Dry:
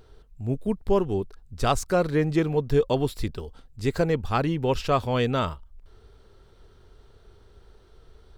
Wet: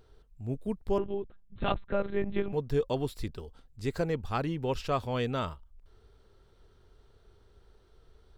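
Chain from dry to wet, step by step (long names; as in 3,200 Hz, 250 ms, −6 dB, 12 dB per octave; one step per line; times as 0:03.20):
0:00.98–0:02.53: one-pitch LPC vocoder at 8 kHz 200 Hz
level −7 dB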